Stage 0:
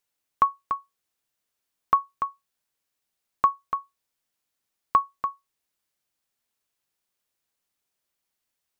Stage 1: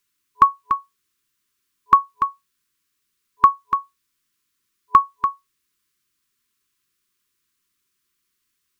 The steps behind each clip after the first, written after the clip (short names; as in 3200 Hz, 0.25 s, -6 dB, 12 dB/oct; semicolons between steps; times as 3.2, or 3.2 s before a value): FFT band-reject 420–1000 Hz; gain +7.5 dB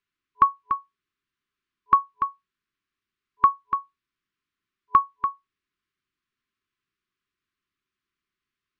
LPF 2800 Hz 12 dB/oct; gain -4.5 dB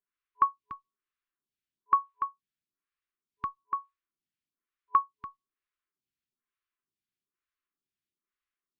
photocell phaser 1.1 Hz; gain -6 dB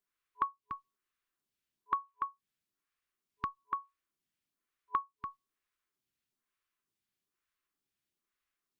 compressor 2.5:1, threshold -39 dBFS, peak gain reduction 13.5 dB; gain +3.5 dB